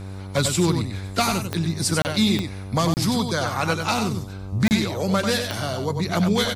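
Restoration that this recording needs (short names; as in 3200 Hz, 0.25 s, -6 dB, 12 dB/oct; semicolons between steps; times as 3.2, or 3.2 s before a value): de-click; de-hum 96.3 Hz, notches 13; interpolate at 2.02/2.94/4.68, 29 ms; inverse comb 95 ms -6.5 dB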